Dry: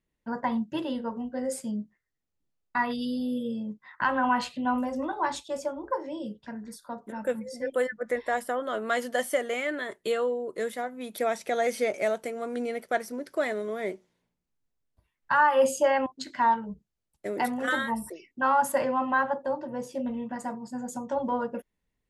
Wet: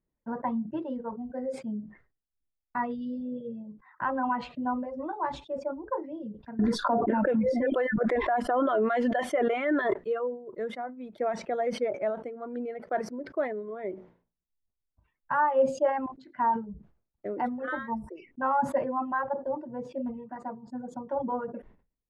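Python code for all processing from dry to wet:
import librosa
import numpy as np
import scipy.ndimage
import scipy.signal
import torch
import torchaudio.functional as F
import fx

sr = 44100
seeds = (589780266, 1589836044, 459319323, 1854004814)

y = fx.chain(x, sr, fx.peak_eq(hz=3200.0, db=4.5, octaves=0.98),
    fx.comb(ms=2.9, depth=0.34),
    fx.env_flatten(amount_pct=100), at=(6.59, 9.94))
y = fx.dereverb_blind(y, sr, rt60_s=1.5)
y = scipy.signal.sosfilt(scipy.signal.butter(2, 1200.0, 'lowpass', fs=sr, output='sos'), y)
y = fx.sustainer(y, sr, db_per_s=130.0)
y = y * 10.0 ** (-1.0 / 20.0)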